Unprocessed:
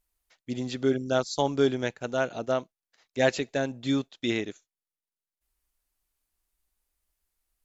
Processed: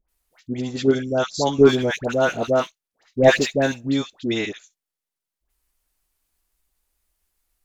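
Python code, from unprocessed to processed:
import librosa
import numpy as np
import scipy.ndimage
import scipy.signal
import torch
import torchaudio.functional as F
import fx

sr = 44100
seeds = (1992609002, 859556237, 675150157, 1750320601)

p1 = fx.level_steps(x, sr, step_db=21)
p2 = x + (p1 * 10.0 ** (-2.0 / 20.0))
p3 = fx.leveller(p2, sr, passes=1, at=(1.58, 3.71))
p4 = fx.dispersion(p3, sr, late='highs', ms=86.0, hz=1100.0)
y = p4 * 10.0 ** (3.5 / 20.0)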